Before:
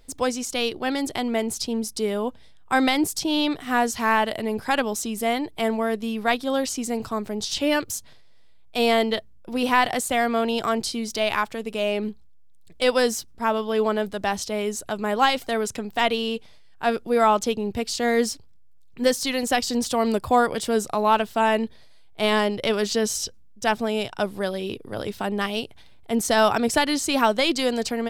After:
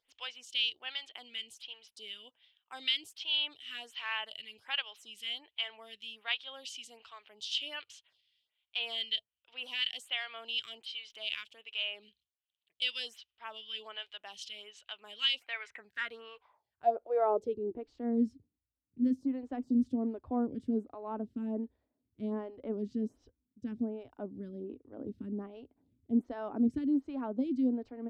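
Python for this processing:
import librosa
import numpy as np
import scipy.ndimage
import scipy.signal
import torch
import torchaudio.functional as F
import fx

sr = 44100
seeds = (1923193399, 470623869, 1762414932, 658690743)

y = fx.low_shelf_res(x, sr, hz=130.0, db=11.0, q=1.5)
y = fx.filter_sweep_bandpass(y, sr, from_hz=3000.0, to_hz=260.0, start_s=15.27, end_s=18.01, q=6.4)
y = fx.stagger_phaser(y, sr, hz=1.3)
y = y * librosa.db_to_amplitude(4.5)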